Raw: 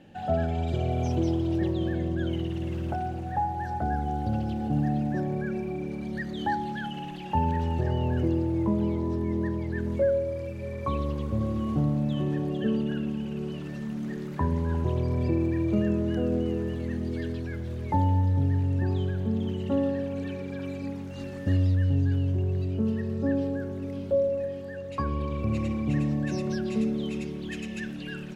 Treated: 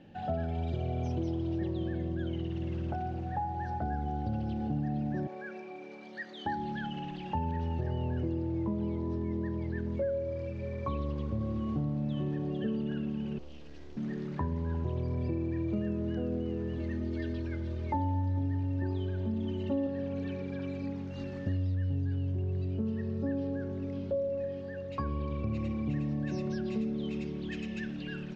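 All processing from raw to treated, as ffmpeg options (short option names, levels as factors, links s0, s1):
-filter_complex "[0:a]asettb=1/sr,asplit=3[s0][s1][s2];[s0]atrim=end=5.274[s3];[s1]atrim=start=5.27:end=6.46,asetpts=PTS-STARTPTS,afade=t=in:d=0.004:c=qsin,afade=t=out:st=1.186:d=0.004:c=qsin,highpass=590,asplit=2[s4][s5];[s5]adelay=18,volume=0.251[s6];[s4][s6]amix=inputs=2:normalize=0,atrim=end_sample=52479[s7];[s2]atrim=start=6.456[s8];[s3][s7]acrossfade=d=0.004:c1=hsin:c2=qsin[s9];[s9][s8]acrossfade=d=0.004:c1=qsin:c2=hsin,asettb=1/sr,asplit=3[s10][s11][s12];[s10]atrim=end=13.384[s13];[s11]atrim=start=13.38:end=13.97,asetpts=PTS-STARTPTS,afade=t=in:d=0.004:c=qsin,afade=t=out:st=0.586:d=0.004:c=qsin,equalizer=f=190:t=o:w=0.64:g=-9,acrossover=split=180|3000[s14][s15][s16];[s15]acompressor=threshold=0.002:ratio=4:attack=3.2:release=140:knee=2.83:detection=peak[s17];[s14][s17][s16]amix=inputs=3:normalize=0,aeval=exprs='abs(val(0))':c=same[s18];[s12]atrim=start=13.966[s19];[s13][s18]acrossfade=d=0.004:c1=hsin:c2=qsin[s20];[s20][s19]acrossfade=d=0.004:c1=qsin:c2=hsin,asettb=1/sr,asplit=3[s21][s22][s23];[s21]atrim=end=16.784[s24];[s22]atrim=start=16.78:end=19.87,asetpts=PTS-STARTPTS,afade=t=in:d=0.004:c=qsin,afade=t=out:st=3.086:d=0.004:c=qsin,bandreject=f=50:t=h:w=6,bandreject=f=100:t=h:w=6,bandreject=f=150:t=h:w=6,bandreject=f=200:t=h:w=6,bandreject=f=250:t=h:w=6,bandreject=f=300:t=h:w=6,aecho=1:1:3.3:0.75,atrim=end_sample=136269[s25];[s23]atrim=start=19.866[s26];[s24][s25]acrossfade=d=0.004:c1=hsin:c2=qsin[s27];[s27][s26]acrossfade=d=0.004:c1=qsin:c2=hsin,lowpass=f=5800:w=0.5412,lowpass=f=5800:w=1.3066,lowshelf=f=460:g=3,acompressor=threshold=0.0447:ratio=2.5,volume=0.631"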